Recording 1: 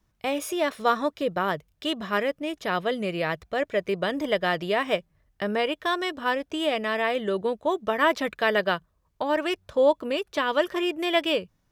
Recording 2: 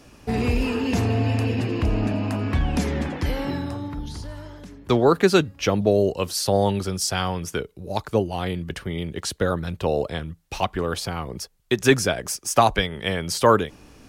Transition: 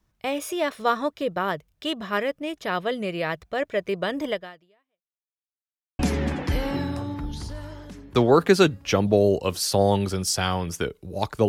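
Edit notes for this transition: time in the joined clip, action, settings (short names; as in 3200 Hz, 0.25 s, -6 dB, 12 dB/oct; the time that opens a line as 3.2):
recording 1
4.3–5.43 fade out exponential
5.43–5.99 mute
5.99 switch to recording 2 from 2.73 s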